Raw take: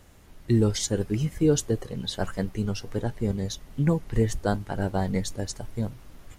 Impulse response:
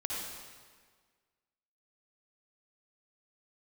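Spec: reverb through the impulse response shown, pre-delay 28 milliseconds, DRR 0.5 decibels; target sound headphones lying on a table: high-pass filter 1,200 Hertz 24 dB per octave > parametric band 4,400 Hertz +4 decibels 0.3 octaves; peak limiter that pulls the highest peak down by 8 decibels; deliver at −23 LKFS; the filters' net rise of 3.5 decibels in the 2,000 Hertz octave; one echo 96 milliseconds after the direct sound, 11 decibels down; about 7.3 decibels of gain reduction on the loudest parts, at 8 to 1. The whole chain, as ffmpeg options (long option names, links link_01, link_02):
-filter_complex "[0:a]equalizer=frequency=2000:width_type=o:gain=5,acompressor=threshold=-24dB:ratio=8,alimiter=limit=-23.5dB:level=0:latency=1,aecho=1:1:96:0.282,asplit=2[link_01][link_02];[1:a]atrim=start_sample=2205,adelay=28[link_03];[link_02][link_03]afir=irnorm=-1:irlink=0,volume=-4dB[link_04];[link_01][link_04]amix=inputs=2:normalize=0,highpass=frequency=1200:width=0.5412,highpass=frequency=1200:width=1.3066,equalizer=frequency=4400:width_type=o:width=0.3:gain=4,volume=14.5dB"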